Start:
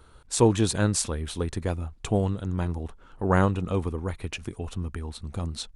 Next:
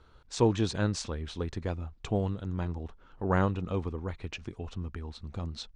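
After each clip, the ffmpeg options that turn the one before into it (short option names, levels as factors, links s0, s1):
-af "lowpass=f=6100:w=0.5412,lowpass=f=6100:w=1.3066,volume=0.562"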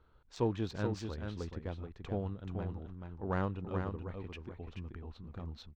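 -af "adynamicsmooth=sensitivity=2.5:basefreq=3500,aecho=1:1:431:0.501,volume=0.422"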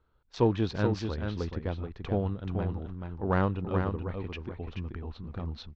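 -af "lowpass=f=5700:w=0.5412,lowpass=f=5700:w=1.3066,agate=range=0.251:threshold=0.00126:ratio=16:detection=peak,volume=2.37"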